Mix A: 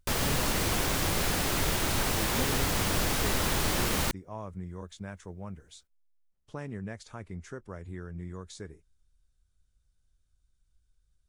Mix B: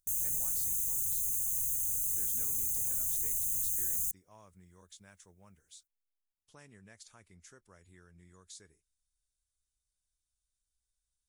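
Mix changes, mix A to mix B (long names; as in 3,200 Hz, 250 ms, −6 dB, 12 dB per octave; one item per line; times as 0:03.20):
background: add linear-phase brick-wall band-stop 170–6,000 Hz
master: add first-order pre-emphasis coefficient 0.9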